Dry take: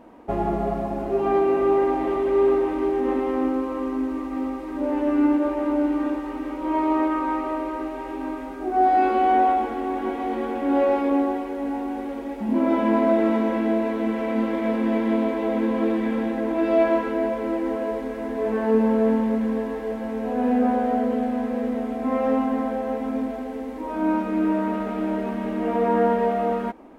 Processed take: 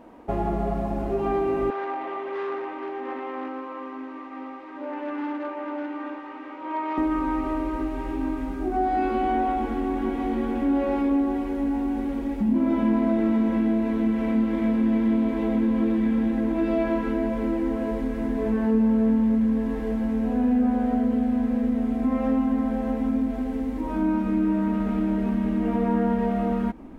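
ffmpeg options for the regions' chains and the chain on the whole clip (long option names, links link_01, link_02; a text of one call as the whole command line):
ffmpeg -i in.wav -filter_complex "[0:a]asettb=1/sr,asplit=3[link_01][link_02][link_03];[link_01]atrim=end=1.704[link_04];[link_02]atrim=start=1.7:end=6.98,asetpts=PTS-STARTPTS,afade=type=in:duration=0.004:curve=qsin,afade=type=out:start_time=5.276:duration=0.004:curve=qsin,asoftclip=type=hard:threshold=-16.5dB,highpass=660,lowpass=2900[link_05];[link_03]atrim=start=6.976[link_06];[link_04][link_05]acrossfade=duration=0.004:curve1=hsin:curve2=qsin[link_07];[link_07][link_06]acrossfade=duration=0.004:curve1=qsin:curve2=hsin,asubboost=boost=5.5:cutoff=210,acompressor=threshold=-23dB:ratio=2" out.wav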